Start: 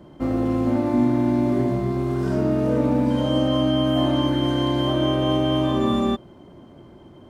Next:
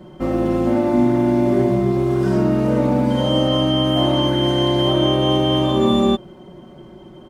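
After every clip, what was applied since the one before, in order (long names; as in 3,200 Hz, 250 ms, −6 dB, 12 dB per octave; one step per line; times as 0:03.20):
comb filter 5.4 ms
level +3.5 dB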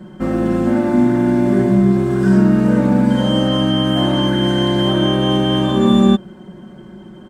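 thirty-one-band graphic EQ 200 Hz +12 dB, 630 Hz −3 dB, 1,600 Hz +10 dB, 8,000 Hz +7 dB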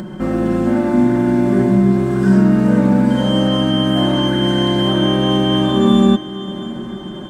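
upward compression, threshold −21 dBFS
feedback delay with all-pass diffusion 606 ms, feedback 57%, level −16 dB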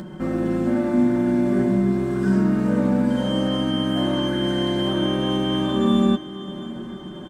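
double-tracking delay 12 ms −10.5 dB
level −6.5 dB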